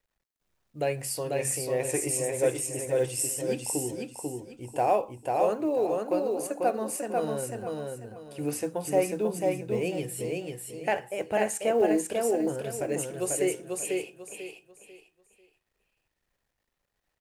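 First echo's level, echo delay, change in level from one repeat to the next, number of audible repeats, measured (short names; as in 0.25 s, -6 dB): -3.0 dB, 0.493 s, -11.0 dB, 3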